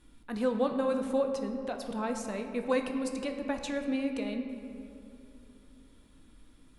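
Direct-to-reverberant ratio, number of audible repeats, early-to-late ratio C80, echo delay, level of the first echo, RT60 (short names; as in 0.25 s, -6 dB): 4.5 dB, none, 7.5 dB, none, none, 2.9 s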